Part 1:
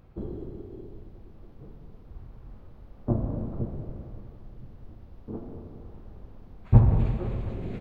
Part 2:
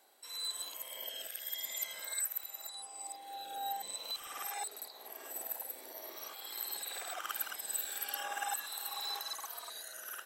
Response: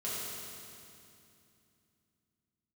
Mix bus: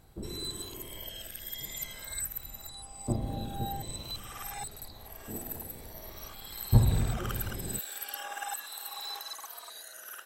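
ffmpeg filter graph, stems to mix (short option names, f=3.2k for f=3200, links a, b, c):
-filter_complex "[0:a]volume=-5dB[a];[1:a]aeval=exprs='0.0891*(cos(1*acos(clip(val(0)/0.0891,-1,1)))-cos(1*PI/2))+0.00891*(cos(4*acos(clip(val(0)/0.0891,-1,1)))-cos(4*PI/2))+0.00794*(cos(6*acos(clip(val(0)/0.0891,-1,1)))-cos(6*PI/2))+0.00282*(cos(8*acos(clip(val(0)/0.0891,-1,1)))-cos(8*PI/2))':c=same,volume=0dB[b];[a][b]amix=inputs=2:normalize=0"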